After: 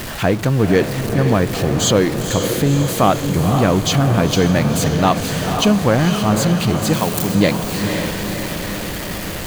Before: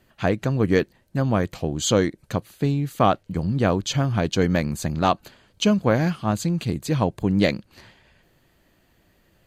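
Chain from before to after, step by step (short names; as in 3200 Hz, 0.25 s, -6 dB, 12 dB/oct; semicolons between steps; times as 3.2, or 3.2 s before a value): zero-crossing step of -27 dBFS; 6.93–7.35 RIAA curve recording; diffused feedback echo 0.505 s, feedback 62%, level -7 dB; in parallel at -2.5 dB: limiter -12 dBFS, peak gain reduction 7 dB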